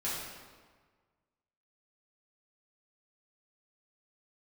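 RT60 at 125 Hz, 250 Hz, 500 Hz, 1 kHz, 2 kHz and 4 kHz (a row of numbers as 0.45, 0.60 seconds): 1.7, 1.5, 1.5, 1.5, 1.3, 1.1 seconds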